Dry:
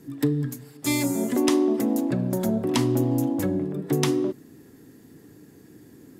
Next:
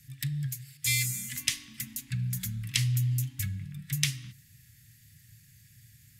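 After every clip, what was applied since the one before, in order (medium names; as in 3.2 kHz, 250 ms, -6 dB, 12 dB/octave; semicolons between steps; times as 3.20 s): elliptic band-stop 120–2100 Hz, stop band 80 dB; trim +2.5 dB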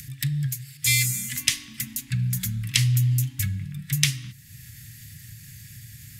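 upward compressor, threshold -41 dBFS; trim +6.5 dB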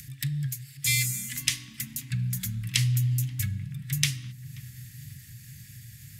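filtered feedback delay 532 ms, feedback 68%, low-pass 800 Hz, level -15 dB; trim -4 dB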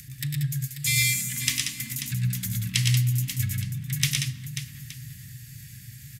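multi-tap echo 99/115/184/192/538/870 ms -8/-3.5/-7.5/-12/-10/-18 dB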